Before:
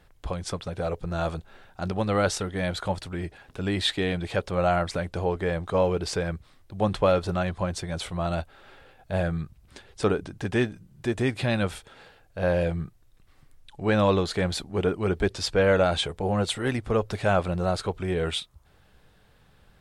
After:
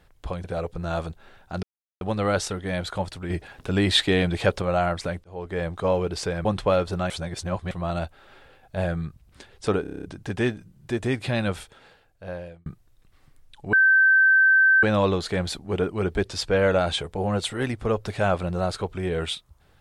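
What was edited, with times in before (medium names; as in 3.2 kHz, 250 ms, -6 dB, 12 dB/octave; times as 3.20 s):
0.44–0.72 s: delete
1.91 s: insert silence 0.38 s
3.20–4.52 s: gain +5.5 dB
5.14–5.53 s: fade in
6.35–6.81 s: delete
7.46–8.07 s: reverse
10.18 s: stutter 0.03 s, 8 plays
11.72–12.81 s: fade out
13.88 s: add tone 1.55 kHz -13.5 dBFS 1.10 s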